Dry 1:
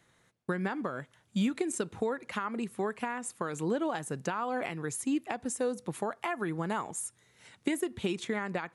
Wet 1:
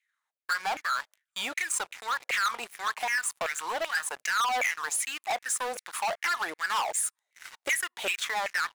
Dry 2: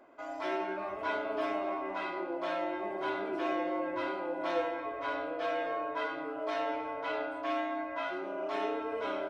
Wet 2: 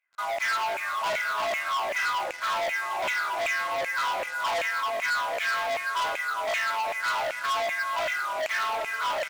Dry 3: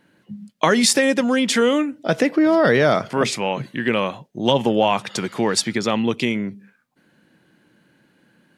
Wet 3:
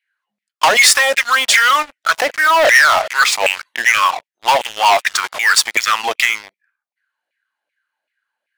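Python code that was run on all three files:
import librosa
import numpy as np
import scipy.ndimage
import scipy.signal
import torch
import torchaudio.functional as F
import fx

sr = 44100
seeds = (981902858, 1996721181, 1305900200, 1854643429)

y = fx.filter_lfo_highpass(x, sr, shape='saw_down', hz=2.6, low_hz=570.0, high_hz=2400.0, q=6.4)
y = fx.leveller(y, sr, passes=5)
y = fx.tilt_shelf(y, sr, db=-5.0, hz=750.0)
y = F.gain(torch.from_numpy(y), -13.5).numpy()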